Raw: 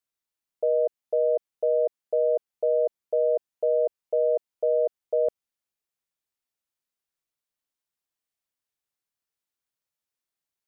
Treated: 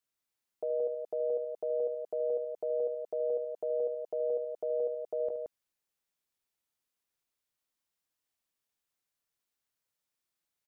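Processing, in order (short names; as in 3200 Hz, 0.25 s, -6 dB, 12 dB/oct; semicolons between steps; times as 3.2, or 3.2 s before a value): limiter -27 dBFS, peak gain reduction 11 dB; loudspeakers at several distances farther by 25 m -11 dB, 60 m -5 dB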